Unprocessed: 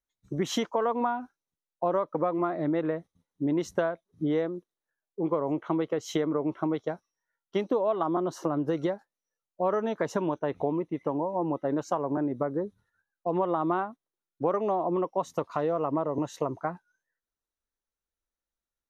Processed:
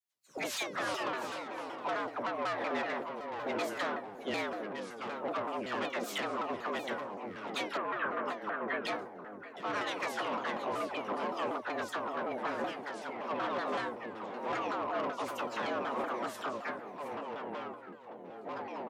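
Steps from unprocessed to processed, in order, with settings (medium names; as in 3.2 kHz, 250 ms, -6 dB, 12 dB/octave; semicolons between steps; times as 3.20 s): spectral peaks clipped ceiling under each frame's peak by 24 dB; feedback comb 520 Hz, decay 0.23 s, harmonics all, mix 80%; phase dispersion lows, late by 48 ms, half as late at 960 Hz; saturation -38 dBFS, distortion -11 dB; ever faster or slower copies 236 ms, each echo -4 st, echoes 2, each echo -6 dB; frequency shift +110 Hz; 7.77–8.85 s: cabinet simulation 130–2400 Hz, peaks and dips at 280 Hz -4 dB, 790 Hz -7 dB, 1.6 kHz +7 dB; delay 719 ms -14 dB; vibrato with a chosen wave saw down 5.3 Hz, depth 250 cents; trim +7.5 dB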